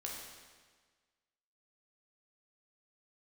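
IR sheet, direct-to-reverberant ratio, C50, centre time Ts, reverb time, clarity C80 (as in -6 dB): -2.5 dB, 1.0 dB, 75 ms, 1.5 s, 3.0 dB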